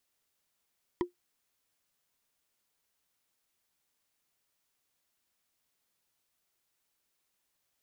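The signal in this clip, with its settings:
struck wood, lowest mode 354 Hz, decay 0.13 s, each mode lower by 5.5 dB, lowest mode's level −22 dB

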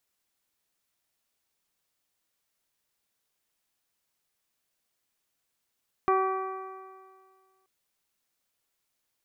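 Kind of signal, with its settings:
stiff-string partials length 1.58 s, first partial 379 Hz, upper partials −3/1/−16/−17.5/−19 dB, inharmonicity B 0.0022, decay 1.87 s, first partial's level −23.5 dB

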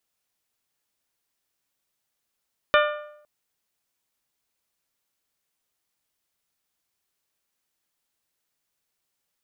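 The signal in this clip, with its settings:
struck metal bell, length 0.51 s, lowest mode 597 Hz, modes 7, decay 0.76 s, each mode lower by 2 dB, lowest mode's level −15.5 dB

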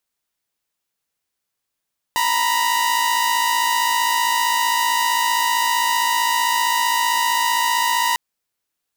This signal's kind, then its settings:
held notes A#5/B5 saw, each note −17 dBFS 6.00 s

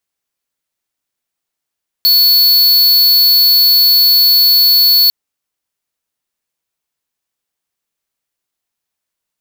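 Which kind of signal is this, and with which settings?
tone square 4,420 Hz −8.5 dBFS 3.05 s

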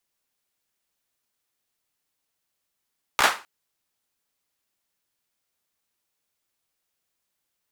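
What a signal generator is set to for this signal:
synth clap length 0.26 s, apart 15 ms, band 1,200 Hz, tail 0.31 s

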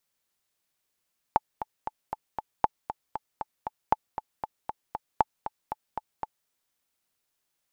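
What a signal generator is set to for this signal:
click track 234 BPM, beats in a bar 5, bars 4, 866 Hz, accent 11.5 dB −6.5 dBFS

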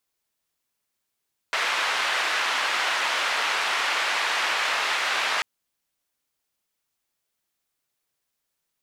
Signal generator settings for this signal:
band-limited noise 860–2,400 Hz, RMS −25 dBFS 3.89 s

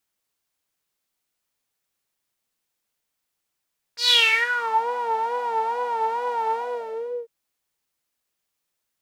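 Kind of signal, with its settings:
subtractive patch with vibrato A#4, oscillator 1 saw, sub −24.5 dB, noise −10 dB, filter bandpass, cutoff 440 Hz, Q 8.4, filter envelope 3.5 octaves, filter decay 0.83 s, filter sustain 25%, attack 137 ms, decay 0.37 s, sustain −12 dB, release 0.73 s, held 2.57 s, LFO 2.3 Hz, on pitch 86 cents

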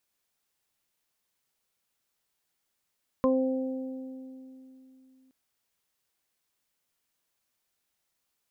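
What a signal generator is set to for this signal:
harmonic partials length 2.07 s, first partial 261 Hz, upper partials 1/−18.5/−2.5 dB, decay 3.36 s, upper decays 2.04/2.22/0.20 s, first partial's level −23 dB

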